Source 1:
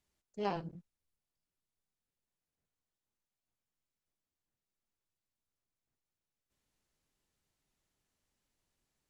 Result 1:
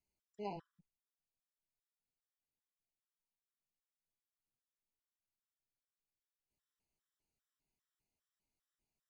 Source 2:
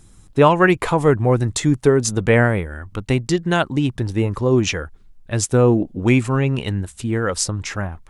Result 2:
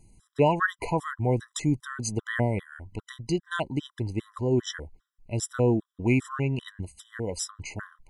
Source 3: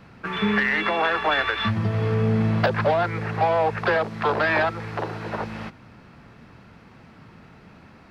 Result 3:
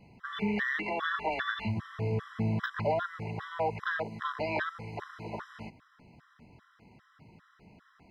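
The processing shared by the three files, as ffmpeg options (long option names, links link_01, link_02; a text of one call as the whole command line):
ffmpeg -i in.wav -af "bandreject=frequency=530:width=12,afftfilt=real='re*gt(sin(2*PI*2.5*pts/sr)*(1-2*mod(floor(b*sr/1024/1000),2)),0)':imag='im*gt(sin(2*PI*2.5*pts/sr)*(1-2*mod(floor(b*sr/1024/1000),2)),0)':win_size=1024:overlap=0.75,volume=-7.5dB" out.wav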